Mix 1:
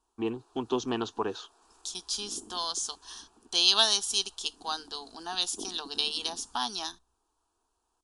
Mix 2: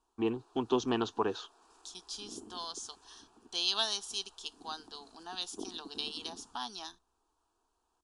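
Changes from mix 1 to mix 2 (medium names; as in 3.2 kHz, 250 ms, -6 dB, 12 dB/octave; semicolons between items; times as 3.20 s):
second voice -7.5 dB; master: add treble shelf 8.4 kHz -9 dB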